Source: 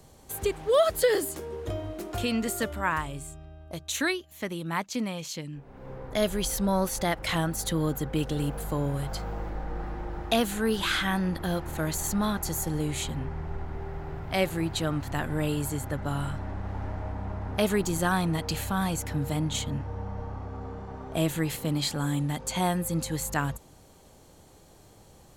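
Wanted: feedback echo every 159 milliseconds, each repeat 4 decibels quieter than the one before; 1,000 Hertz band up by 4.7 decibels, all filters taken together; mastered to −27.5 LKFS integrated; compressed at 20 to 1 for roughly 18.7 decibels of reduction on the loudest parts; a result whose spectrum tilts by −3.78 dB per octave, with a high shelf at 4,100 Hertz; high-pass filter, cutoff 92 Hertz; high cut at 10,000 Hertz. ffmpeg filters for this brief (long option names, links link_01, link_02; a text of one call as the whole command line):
ffmpeg -i in.wav -af "highpass=92,lowpass=10000,equalizer=frequency=1000:width_type=o:gain=5.5,highshelf=frequency=4100:gain=8,acompressor=threshold=-34dB:ratio=20,aecho=1:1:159|318|477|636|795|954|1113|1272|1431:0.631|0.398|0.25|0.158|0.0994|0.0626|0.0394|0.0249|0.0157,volume=9dB" out.wav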